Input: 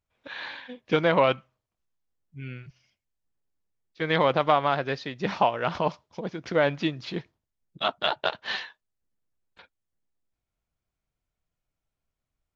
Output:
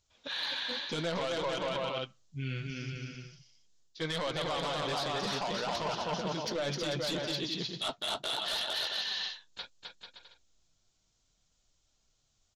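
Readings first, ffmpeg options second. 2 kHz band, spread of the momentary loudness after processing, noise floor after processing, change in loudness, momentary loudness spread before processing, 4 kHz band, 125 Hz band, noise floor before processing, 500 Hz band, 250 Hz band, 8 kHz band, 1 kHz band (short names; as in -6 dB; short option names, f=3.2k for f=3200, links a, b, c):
-7.0 dB, 12 LU, -75 dBFS, -7.5 dB, 18 LU, +2.0 dB, -4.5 dB, under -85 dBFS, -8.5 dB, -7.0 dB, n/a, -9.5 dB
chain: -af "aecho=1:1:260|442|569.4|658.6|721:0.631|0.398|0.251|0.158|0.1,aexciter=amount=4.1:drive=6.4:freq=3.2k,alimiter=limit=-14.5dB:level=0:latency=1:release=26,aresample=16000,aresample=44100,aeval=exprs='0.2*sin(PI/2*1.78*val(0)/0.2)':c=same,areverse,acompressor=threshold=-29dB:ratio=5,areverse,flanger=delay=1.8:depth=8.2:regen=-44:speed=0.68:shape=triangular"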